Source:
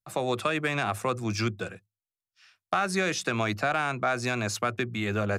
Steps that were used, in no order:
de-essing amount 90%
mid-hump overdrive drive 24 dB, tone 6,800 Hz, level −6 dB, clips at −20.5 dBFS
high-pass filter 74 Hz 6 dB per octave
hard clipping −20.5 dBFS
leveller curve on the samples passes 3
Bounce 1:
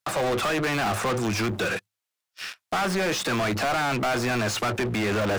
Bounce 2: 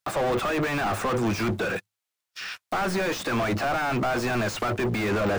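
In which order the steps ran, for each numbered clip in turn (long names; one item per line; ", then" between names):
high-pass filter, then hard clipping, then leveller curve on the samples, then de-essing, then mid-hump overdrive
hard clipping, then high-pass filter, then mid-hump overdrive, then leveller curve on the samples, then de-essing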